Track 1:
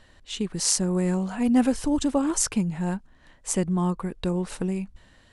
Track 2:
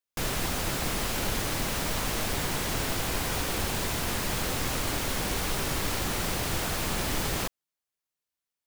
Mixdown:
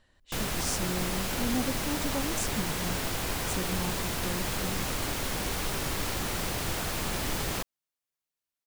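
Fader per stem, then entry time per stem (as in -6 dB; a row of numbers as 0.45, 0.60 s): -11.0, -2.0 dB; 0.00, 0.15 s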